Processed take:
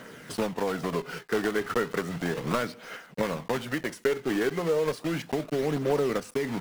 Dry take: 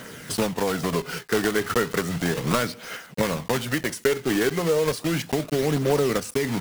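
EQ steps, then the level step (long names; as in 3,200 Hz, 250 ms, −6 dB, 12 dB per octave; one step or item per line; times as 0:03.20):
parametric band 77 Hz −8.5 dB 1.8 octaves
high-shelf EQ 3,400 Hz −9.5 dB
−3.0 dB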